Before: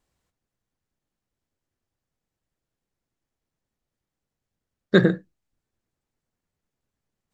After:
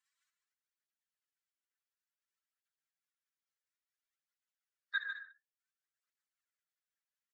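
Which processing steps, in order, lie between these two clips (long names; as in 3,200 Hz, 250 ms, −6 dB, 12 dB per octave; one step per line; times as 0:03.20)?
expanding power law on the bin magnitudes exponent 1.6
downward compressor, threshold −20 dBFS, peak gain reduction 9.5 dB
Butterworth high-pass 1,300 Hz 36 dB per octave
multi-tap delay 65/148/151/210 ms −11/−11.5/−9.5/−14 dB
through-zero flanger with one copy inverted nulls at 0.57 Hz, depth 4.3 ms
level +7 dB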